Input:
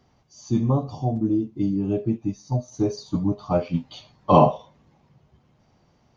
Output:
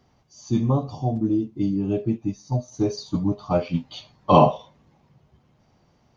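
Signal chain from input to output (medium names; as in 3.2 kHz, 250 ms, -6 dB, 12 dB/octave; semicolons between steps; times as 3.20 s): dynamic bell 3.5 kHz, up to +5 dB, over -44 dBFS, Q 0.73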